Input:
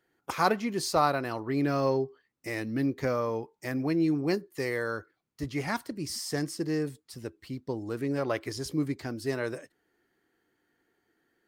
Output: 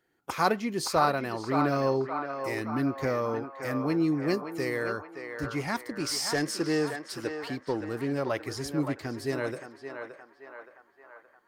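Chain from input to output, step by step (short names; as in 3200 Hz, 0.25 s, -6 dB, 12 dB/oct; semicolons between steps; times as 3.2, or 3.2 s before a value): 5.95–7.81 overdrive pedal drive 16 dB, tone 4800 Hz, clips at -17 dBFS; narrowing echo 0.571 s, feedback 65%, band-pass 1100 Hz, level -4.5 dB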